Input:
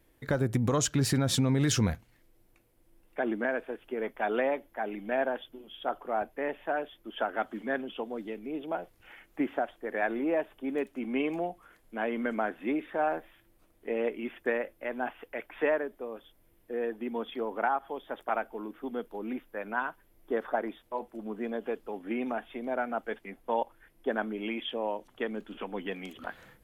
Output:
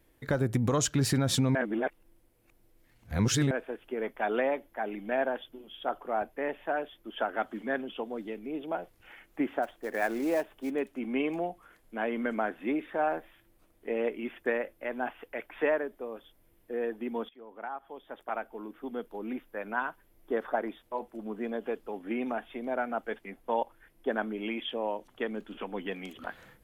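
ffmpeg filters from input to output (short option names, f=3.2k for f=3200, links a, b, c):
-filter_complex "[0:a]asplit=3[a][b][c];[a]afade=t=out:st=9.62:d=0.02[d];[b]acrusher=bits=5:mode=log:mix=0:aa=0.000001,afade=t=in:st=9.62:d=0.02,afade=t=out:st=10.69:d=0.02[e];[c]afade=t=in:st=10.69:d=0.02[f];[d][e][f]amix=inputs=3:normalize=0,asplit=4[g][h][i][j];[g]atrim=end=1.552[k];[h]atrim=start=1.548:end=3.512,asetpts=PTS-STARTPTS,areverse[l];[i]atrim=start=3.508:end=17.29,asetpts=PTS-STARTPTS,afade=t=out:st=13.778:d=0.004:c=hsin:silence=0.0841395[m];[j]atrim=start=17.29,asetpts=PTS-STARTPTS,afade=t=in:d=2.6:c=qsin:silence=0.0841395[n];[k][l]acrossfade=d=0.004:c1=hsin:c2=hsin[o];[m][n]concat=n=2:v=0:a=1[p];[o][p]acrossfade=d=0.004:c1=hsin:c2=hsin"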